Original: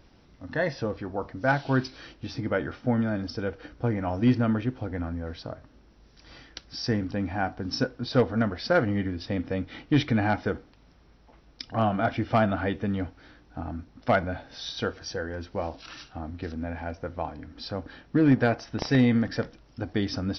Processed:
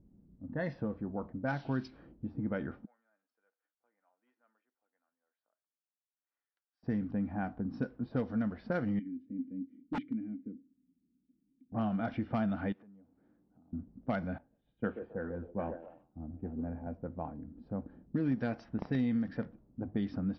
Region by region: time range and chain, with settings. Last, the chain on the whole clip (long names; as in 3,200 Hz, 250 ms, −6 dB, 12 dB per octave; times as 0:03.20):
0:02.85–0:06.83: Bessel high-pass filter 2,200 Hz, order 4 + spectral tilt −2.5 dB per octave
0:08.99–0:11.72: formant filter i + wrap-around overflow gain 22.5 dB
0:12.72–0:13.73: mu-law and A-law mismatch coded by mu + downward compressor 16 to 1, threshold −39 dBFS + high-pass filter 1,200 Hz 6 dB per octave
0:14.38–0:16.87: Butterworth low-pass 3,000 Hz + echo through a band-pass that steps 138 ms, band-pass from 440 Hz, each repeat 0.7 octaves, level −4.5 dB + multiband upward and downward expander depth 100%
0:19.24–0:19.96: high-frequency loss of the air 69 metres + mains-hum notches 50/100/150 Hz
whole clip: low-pass that shuts in the quiet parts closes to 310 Hz, open at −18.5 dBFS; parametric band 200 Hz +11 dB 0.78 octaves; downward compressor 2.5 to 1, threshold −24 dBFS; level −8 dB